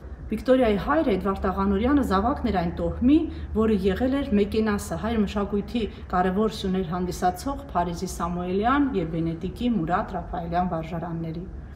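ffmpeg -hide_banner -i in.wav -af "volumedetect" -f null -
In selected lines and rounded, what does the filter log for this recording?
mean_volume: -24.3 dB
max_volume: -8.6 dB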